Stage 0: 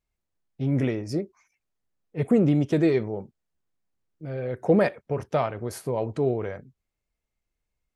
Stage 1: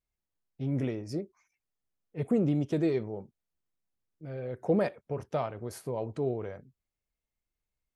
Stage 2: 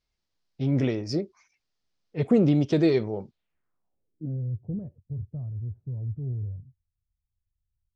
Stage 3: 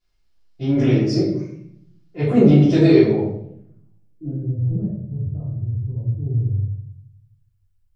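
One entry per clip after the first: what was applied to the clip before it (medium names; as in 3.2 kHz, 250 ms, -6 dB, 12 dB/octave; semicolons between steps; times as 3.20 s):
dynamic bell 1.9 kHz, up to -4 dB, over -45 dBFS, Q 1.5; trim -6.5 dB
low-pass sweep 4.9 kHz -> 100 Hz, 3.28–4.57 s; trim +6.5 dB
simulated room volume 150 m³, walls mixed, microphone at 3.2 m; trim -3 dB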